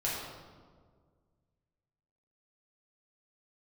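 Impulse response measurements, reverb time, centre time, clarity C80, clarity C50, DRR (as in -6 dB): 1.7 s, 90 ms, 2.0 dB, -0.5 dB, -7.0 dB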